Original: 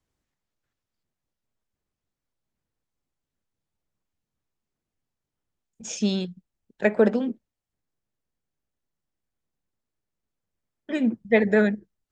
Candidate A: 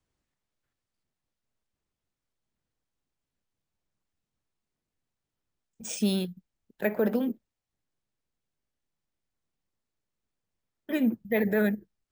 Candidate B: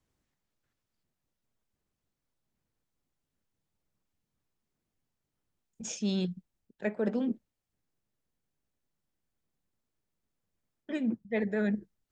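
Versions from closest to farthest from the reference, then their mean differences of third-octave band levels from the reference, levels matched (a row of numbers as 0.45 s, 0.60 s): B, A; 2.5 dB, 4.0 dB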